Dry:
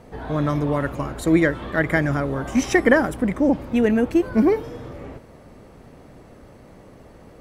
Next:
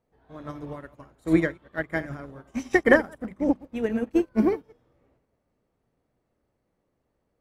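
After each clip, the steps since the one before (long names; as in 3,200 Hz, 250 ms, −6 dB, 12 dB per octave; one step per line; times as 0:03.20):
delay that plays each chunk backwards 105 ms, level −9 dB
mains-hum notches 50/100/150/200/250 Hz
expander for the loud parts 2.5 to 1, over −31 dBFS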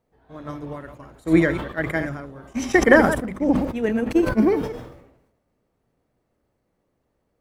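level that may fall only so fast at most 63 dB per second
level +3 dB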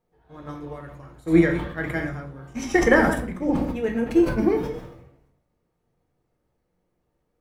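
convolution reverb RT60 0.35 s, pre-delay 4 ms, DRR 3 dB
level −4.5 dB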